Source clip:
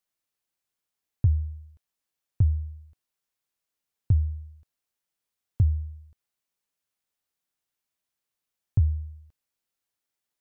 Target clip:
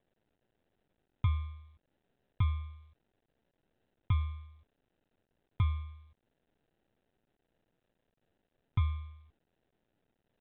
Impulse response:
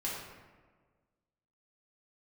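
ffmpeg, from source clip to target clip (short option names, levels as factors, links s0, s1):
-af "acrusher=samples=39:mix=1:aa=0.000001,volume=0.398" -ar 8000 -c:a pcm_mulaw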